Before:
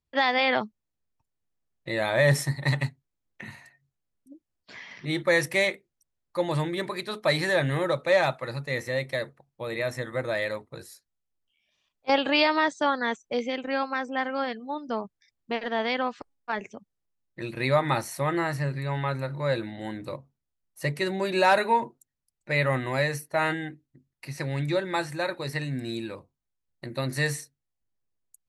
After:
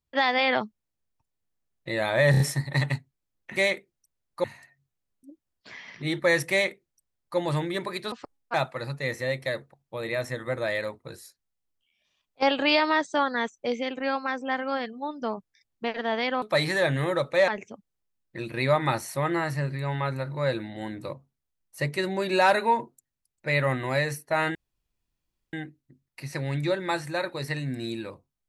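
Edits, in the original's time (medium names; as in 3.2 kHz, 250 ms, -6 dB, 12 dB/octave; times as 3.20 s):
2.31 s: stutter 0.03 s, 4 plays
5.53–6.41 s: copy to 3.47 s
7.15–8.21 s: swap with 16.09–16.51 s
23.58 s: insert room tone 0.98 s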